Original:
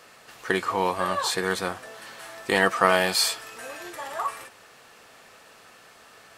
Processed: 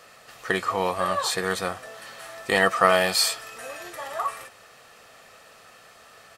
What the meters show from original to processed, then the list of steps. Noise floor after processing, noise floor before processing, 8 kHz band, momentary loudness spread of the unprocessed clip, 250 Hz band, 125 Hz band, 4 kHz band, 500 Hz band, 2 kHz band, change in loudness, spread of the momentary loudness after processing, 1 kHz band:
-52 dBFS, -52 dBFS, +1.0 dB, 20 LU, -1.5 dB, 0.0 dB, +0.5 dB, +1.0 dB, +0.5 dB, +1.0 dB, 20 LU, +0.5 dB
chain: comb 1.6 ms, depth 33%

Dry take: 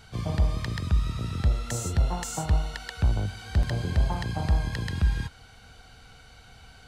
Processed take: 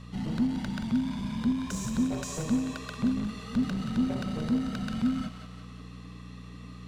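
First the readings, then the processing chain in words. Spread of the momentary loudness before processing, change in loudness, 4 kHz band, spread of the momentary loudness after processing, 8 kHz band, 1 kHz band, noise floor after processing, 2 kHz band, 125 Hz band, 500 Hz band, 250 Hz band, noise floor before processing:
4 LU, -2.0 dB, -3.5 dB, 16 LU, -4.0 dB, -5.0 dB, -45 dBFS, -5.0 dB, -9.5 dB, -3.0 dB, +9.5 dB, -52 dBFS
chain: treble shelf 8.1 kHz -7 dB; in parallel at -4.5 dB: wavefolder -29.5 dBFS; on the sum: thinning echo 178 ms, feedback 53%, level -8 dB; frequency shift -310 Hz; mains buzz 60 Hz, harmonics 3, -40 dBFS 0 dB/octave; trim -5 dB

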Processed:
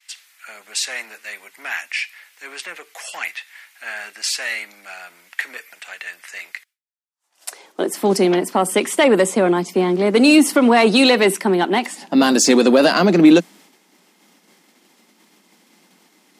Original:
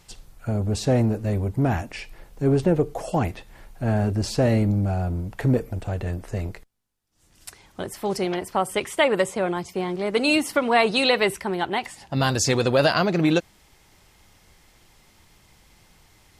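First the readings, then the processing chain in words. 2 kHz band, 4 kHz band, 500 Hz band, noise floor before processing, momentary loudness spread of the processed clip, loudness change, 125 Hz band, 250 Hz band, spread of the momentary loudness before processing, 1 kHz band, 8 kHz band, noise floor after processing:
+5.5 dB, +6.0 dB, +5.5 dB, -58 dBFS, 22 LU, +7.0 dB, -7.5 dB, +8.0 dB, 11 LU, +4.5 dB, +9.0 dB, -59 dBFS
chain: expander -49 dBFS; Chebyshev high-pass 170 Hz, order 5; dynamic bell 9.1 kHz, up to +4 dB, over -43 dBFS, Q 0.86; in parallel at -2 dB: peak limiter -15 dBFS, peak gain reduction 9.5 dB; on the sum: saturation -6.5 dBFS, distortion -23 dB; high-pass sweep 2 kHz -> 240 Hz, 6.78–8.02 s; trim +2.5 dB

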